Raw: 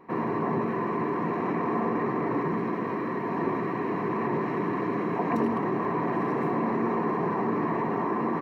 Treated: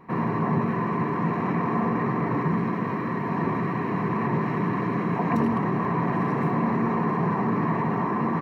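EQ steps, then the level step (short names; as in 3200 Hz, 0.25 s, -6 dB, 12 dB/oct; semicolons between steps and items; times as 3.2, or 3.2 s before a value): EQ curve 170 Hz 0 dB, 340 Hz -11 dB, 1200 Hz -6 dB; +9.0 dB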